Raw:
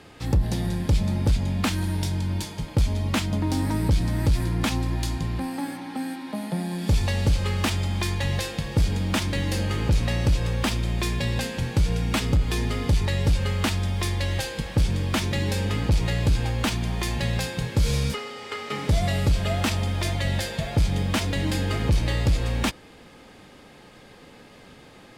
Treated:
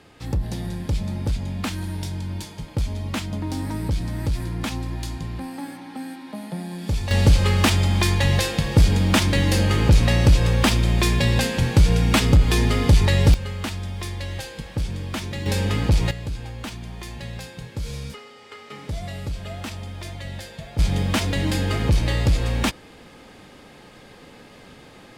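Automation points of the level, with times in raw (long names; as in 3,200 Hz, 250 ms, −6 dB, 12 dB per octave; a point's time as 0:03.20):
−3 dB
from 0:07.11 +6.5 dB
from 0:13.34 −4.5 dB
from 0:15.46 +3 dB
from 0:16.11 −8.5 dB
from 0:20.79 +2.5 dB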